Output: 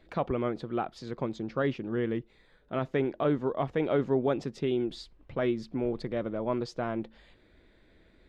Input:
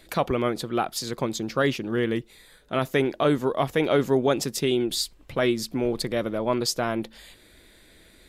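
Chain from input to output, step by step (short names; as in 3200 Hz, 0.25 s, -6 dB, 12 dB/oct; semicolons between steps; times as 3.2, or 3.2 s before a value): tape spacing loss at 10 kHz 30 dB; gain -4 dB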